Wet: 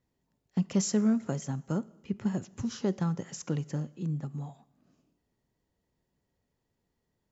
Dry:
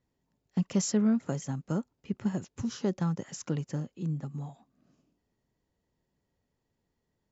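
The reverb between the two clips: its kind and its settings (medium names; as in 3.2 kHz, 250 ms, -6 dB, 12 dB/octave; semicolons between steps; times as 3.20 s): two-slope reverb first 0.95 s, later 2.6 s, from -25 dB, DRR 19 dB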